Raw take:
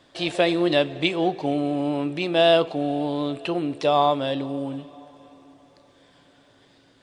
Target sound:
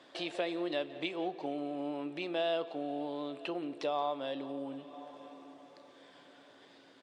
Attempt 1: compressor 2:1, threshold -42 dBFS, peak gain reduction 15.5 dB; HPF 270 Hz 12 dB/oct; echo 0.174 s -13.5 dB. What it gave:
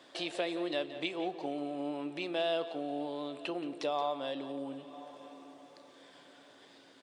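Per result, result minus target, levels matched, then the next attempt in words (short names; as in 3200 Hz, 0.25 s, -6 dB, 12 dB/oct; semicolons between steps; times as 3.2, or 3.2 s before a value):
8000 Hz band +5.0 dB; echo-to-direct +6.5 dB
compressor 2:1, threshold -42 dBFS, peak gain reduction 15.5 dB; HPF 270 Hz 12 dB/oct; high shelf 7000 Hz -10.5 dB; echo 0.174 s -13.5 dB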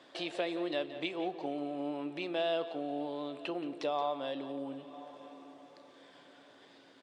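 echo-to-direct +6.5 dB
compressor 2:1, threshold -42 dBFS, peak gain reduction 15.5 dB; HPF 270 Hz 12 dB/oct; high shelf 7000 Hz -10.5 dB; echo 0.174 s -20 dB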